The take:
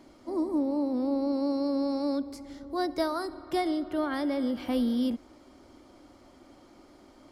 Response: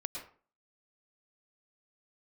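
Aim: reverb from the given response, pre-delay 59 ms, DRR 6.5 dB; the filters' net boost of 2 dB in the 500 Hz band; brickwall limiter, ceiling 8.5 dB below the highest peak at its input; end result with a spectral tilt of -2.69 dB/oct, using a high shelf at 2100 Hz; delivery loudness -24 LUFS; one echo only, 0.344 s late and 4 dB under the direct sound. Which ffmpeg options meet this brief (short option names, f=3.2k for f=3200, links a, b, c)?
-filter_complex "[0:a]equalizer=f=500:t=o:g=3,highshelf=f=2.1k:g=-7,alimiter=level_in=1dB:limit=-24dB:level=0:latency=1,volume=-1dB,aecho=1:1:344:0.631,asplit=2[a][b];[1:a]atrim=start_sample=2205,adelay=59[c];[b][c]afir=irnorm=-1:irlink=0,volume=-6.5dB[d];[a][d]amix=inputs=2:normalize=0,volume=7dB"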